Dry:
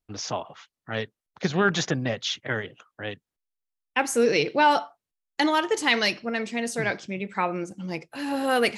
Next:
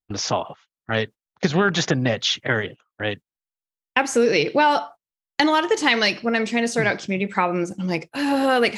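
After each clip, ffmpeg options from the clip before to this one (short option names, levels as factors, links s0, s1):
-filter_complex "[0:a]acrossover=split=7300[s0][s1];[s1]acompressor=threshold=0.00224:ratio=4:attack=1:release=60[s2];[s0][s2]amix=inputs=2:normalize=0,agate=range=0.112:threshold=0.00794:ratio=16:detection=peak,acompressor=threshold=0.0562:ratio=2.5,volume=2.66"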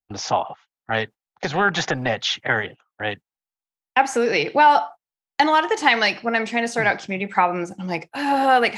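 -filter_complex "[0:a]adynamicequalizer=threshold=0.0224:dfrequency=1700:dqfactor=0.79:tfrequency=1700:tqfactor=0.79:attack=5:release=100:ratio=0.375:range=3:mode=boostabove:tftype=bell,acrossover=split=250[s0][s1];[s0]aeval=exprs='0.075*(abs(mod(val(0)/0.075+3,4)-2)-1)':c=same[s2];[s1]equalizer=f=790:w=3.2:g=10[s3];[s2][s3]amix=inputs=2:normalize=0,volume=0.631"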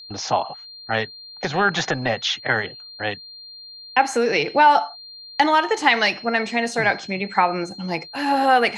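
-af "aeval=exprs='val(0)+0.0126*sin(2*PI*4200*n/s)':c=same"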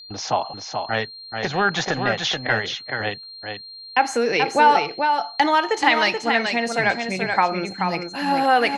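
-af "aecho=1:1:431:0.531,volume=0.891"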